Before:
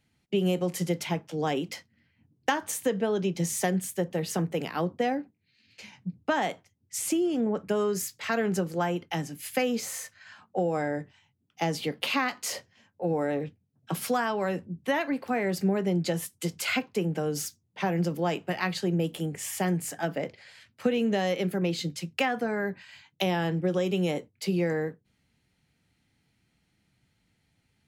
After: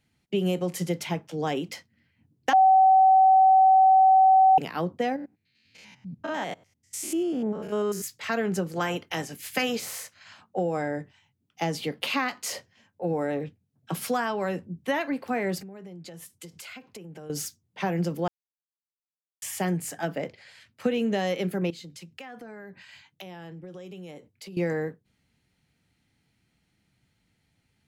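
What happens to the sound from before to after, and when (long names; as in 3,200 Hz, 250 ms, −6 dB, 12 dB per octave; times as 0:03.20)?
0:02.53–0:04.58: beep over 762 Hz −13.5 dBFS
0:05.16–0:08.04: spectrum averaged block by block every 100 ms
0:08.75–0:10.41: ceiling on every frequency bin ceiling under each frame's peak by 13 dB
0:15.60–0:17.30: downward compressor 8 to 1, threshold −40 dBFS
0:18.28–0:19.42: silence
0:21.70–0:24.57: downward compressor 4 to 1, threshold −42 dBFS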